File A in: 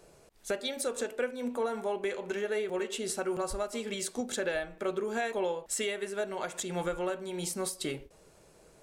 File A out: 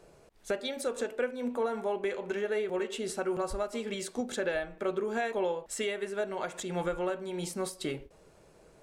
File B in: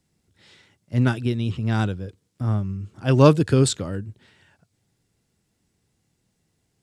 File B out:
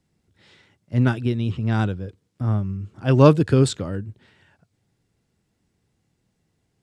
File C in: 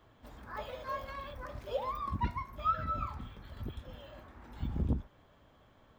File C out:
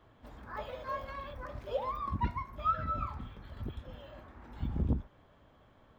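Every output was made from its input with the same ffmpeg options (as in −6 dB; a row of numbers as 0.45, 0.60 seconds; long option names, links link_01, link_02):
-af "highshelf=frequency=4400:gain=-8,volume=1dB"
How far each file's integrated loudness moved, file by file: 0.0, +1.0, +0.5 LU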